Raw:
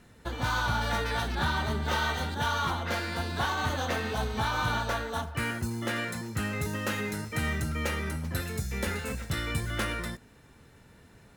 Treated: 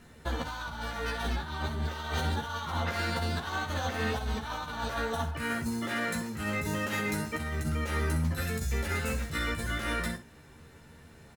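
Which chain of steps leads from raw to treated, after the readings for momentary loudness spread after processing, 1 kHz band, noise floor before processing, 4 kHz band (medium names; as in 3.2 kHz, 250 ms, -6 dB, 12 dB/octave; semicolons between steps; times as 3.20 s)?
5 LU, -3.5 dB, -56 dBFS, -3.0 dB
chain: compressor with a negative ratio -32 dBFS, ratio -0.5; early reflections 13 ms -3.5 dB, 63 ms -11 dB; trim -1.5 dB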